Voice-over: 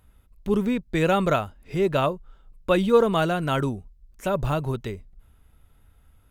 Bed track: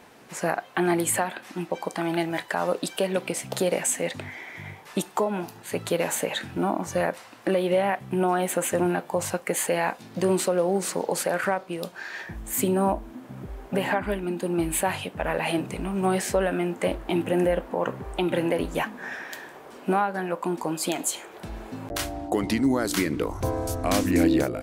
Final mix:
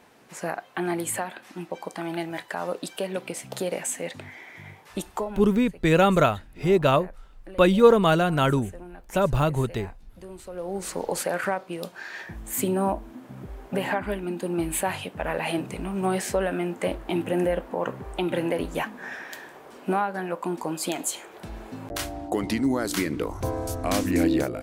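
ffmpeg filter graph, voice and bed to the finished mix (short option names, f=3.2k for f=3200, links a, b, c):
-filter_complex "[0:a]adelay=4900,volume=2.5dB[a];[1:a]volume=13.5dB,afade=t=out:st=5.2:d=0.31:silence=0.177828,afade=t=in:st=10.44:d=0.64:silence=0.125893[b];[a][b]amix=inputs=2:normalize=0"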